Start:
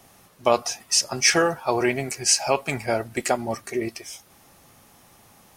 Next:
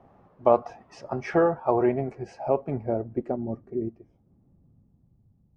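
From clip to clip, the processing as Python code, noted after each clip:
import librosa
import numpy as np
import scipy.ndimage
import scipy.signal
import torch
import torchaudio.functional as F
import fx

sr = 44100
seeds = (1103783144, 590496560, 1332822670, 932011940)

y = fx.filter_sweep_lowpass(x, sr, from_hz=870.0, to_hz=130.0, start_s=1.75, end_s=5.32, q=0.93)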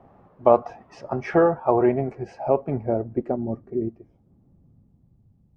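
y = fx.high_shelf(x, sr, hz=4700.0, db=-8.5)
y = y * librosa.db_to_amplitude(3.5)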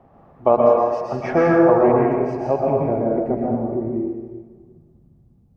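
y = fx.rev_plate(x, sr, seeds[0], rt60_s=1.5, hf_ratio=0.7, predelay_ms=105, drr_db=-3.0)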